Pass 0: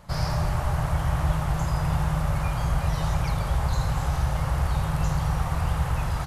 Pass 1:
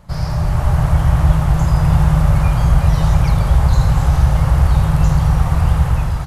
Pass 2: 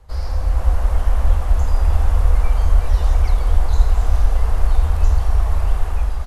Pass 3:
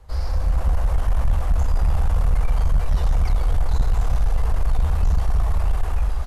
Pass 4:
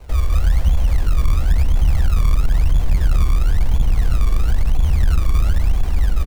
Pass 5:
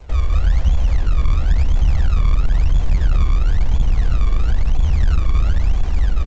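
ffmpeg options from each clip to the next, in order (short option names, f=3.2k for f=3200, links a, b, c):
-af "lowshelf=f=320:g=7,dynaudnorm=f=220:g=5:m=11.5dB"
-af "lowshelf=f=69:g=11,afreqshift=-82,volume=-6.5dB"
-af "asoftclip=type=tanh:threshold=-12dB"
-filter_complex "[0:a]acrossover=split=250|540[a][b][c];[a]acompressor=threshold=-20dB:ratio=4[d];[b]acompressor=threshold=-55dB:ratio=4[e];[c]acompressor=threshold=-49dB:ratio=4[f];[d][e][f]amix=inputs=3:normalize=0,acrusher=samples=26:mix=1:aa=0.000001:lfo=1:lforange=26:lforate=0.99,asplit=6[g][h][i][j][k][l];[h]adelay=137,afreqshift=-78,volume=-22.5dB[m];[i]adelay=274,afreqshift=-156,volume=-26.4dB[n];[j]adelay=411,afreqshift=-234,volume=-30.3dB[o];[k]adelay=548,afreqshift=-312,volume=-34.1dB[p];[l]adelay=685,afreqshift=-390,volume=-38dB[q];[g][m][n][o][p][q]amix=inputs=6:normalize=0,volume=8.5dB"
-ar 16000 -c:a g722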